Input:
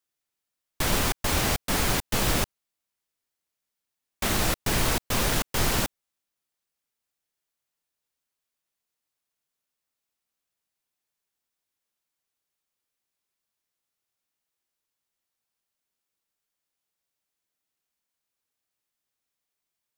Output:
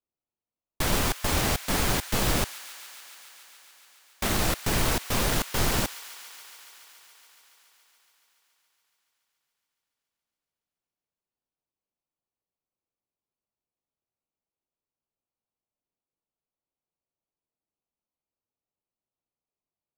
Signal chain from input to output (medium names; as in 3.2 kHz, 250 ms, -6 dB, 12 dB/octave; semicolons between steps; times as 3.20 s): local Wiener filter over 25 samples; on a send: feedback echo behind a high-pass 141 ms, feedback 83%, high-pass 1.4 kHz, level -15.5 dB